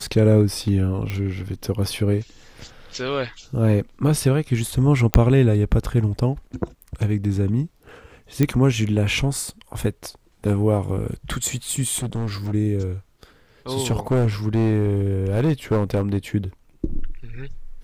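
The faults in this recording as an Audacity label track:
1.100000	1.100000	pop -14 dBFS
5.140000	5.140000	pop -1 dBFS
8.430000	8.430000	pop -7 dBFS
11.970000	12.520000	clipped -21.5 dBFS
13.900000	16.180000	clipped -14.5 dBFS

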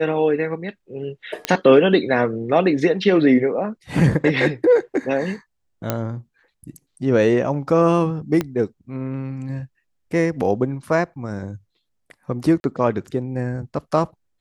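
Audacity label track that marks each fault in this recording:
1.450000	1.450000	pop -6 dBFS
5.900000	5.900000	pop -6 dBFS
8.410000	8.410000	pop -9 dBFS
12.600000	12.640000	gap 41 ms

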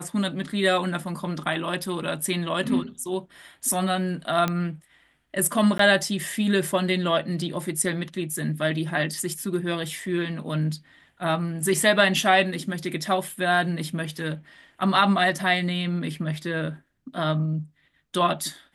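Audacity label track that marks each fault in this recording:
4.480000	4.480000	pop -11 dBFS
5.780000	5.790000	gap 13 ms

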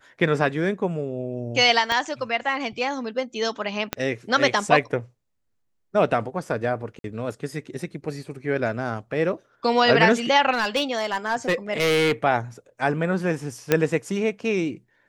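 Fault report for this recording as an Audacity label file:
1.920000	1.920000	pop -11 dBFS
3.930000	3.930000	pop -8 dBFS
6.990000	7.040000	gap 52 ms
10.530000	12.120000	clipped -16.5 dBFS
13.720000	13.720000	pop -4 dBFS

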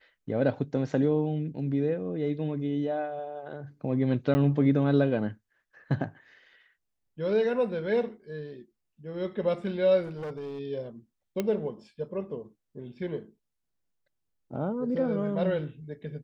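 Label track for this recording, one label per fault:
4.340000	4.350000	gap 10 ms
10.040000	10.590000	clipped -32.5 dBFS
11.400000	11.400000	pop -15 dBFS

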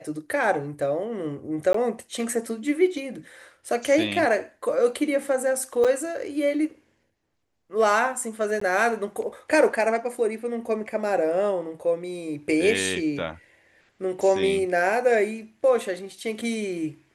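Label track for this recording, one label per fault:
1.730000	1.740000	gap 14 ms
5.840000	5.850000	gap 6.5 ms
8.600000	8.610000	gap 14 ms

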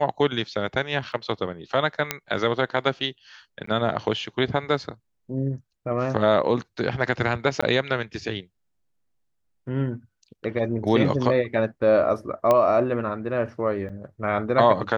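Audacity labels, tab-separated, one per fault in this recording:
1.120000	1.120000	gap 2.3 ms
2.110000	2.110000	pop -6 dBFS
3.660000	3.670000	gap 14 ms
7.610000	7.620000	gap 15 ms
12.510000	12.510000	pop -8 dBFS
13.890000	13.900000	gap 5.5 ms

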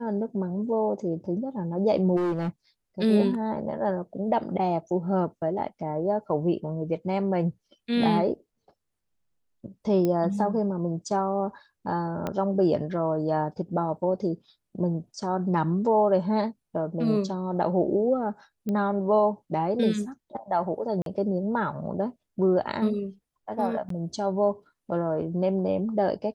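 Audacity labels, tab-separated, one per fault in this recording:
2.160000	2.490000	clipped -23.5 dBFS
10.050000	10.050000	pop -15 dBFS
12.270000	12.270000	pop -16 dBFS
18.690000	18.690000	pop -19 dBFS
21.020000	21.060000	gap 42 ms
23.890000	23.900000	gap 13 ms

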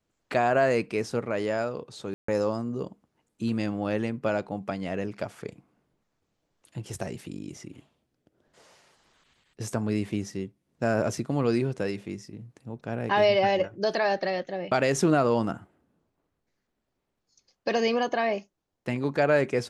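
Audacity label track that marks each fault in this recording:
2.140000	2.280000	gap 0.144 s

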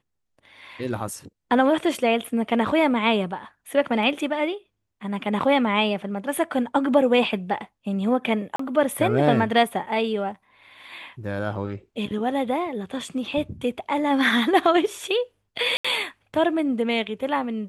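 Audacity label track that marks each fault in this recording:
8.560000	8.590000	gap 34 ms
15.770000	15.850000	gap 75 ms

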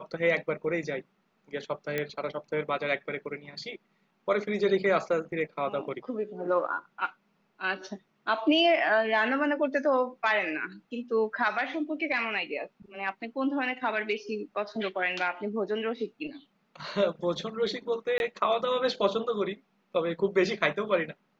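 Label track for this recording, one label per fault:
1.980000	1.980000	pop -16 dBFS
18.180000	18.200000	gap 21 ms

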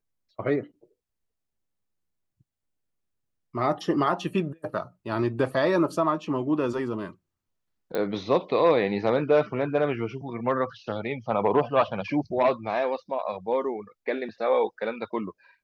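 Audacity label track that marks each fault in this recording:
7.950000	7.950000	pop -16 dBFS

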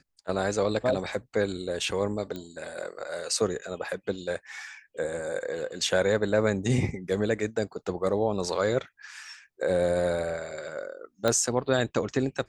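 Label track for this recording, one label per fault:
2.360000	2.360000	pop -23 dBFS
11.280000	11.280000	pop -11 dBFS

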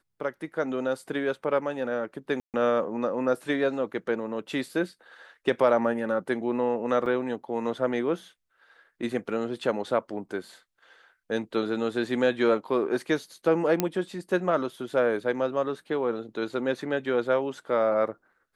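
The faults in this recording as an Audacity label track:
2.400000	2.540000	gap 0.138 s
7.060000	7.060000	gap 2.5 ms
13.800000	13.800000	pop -8 dBFS

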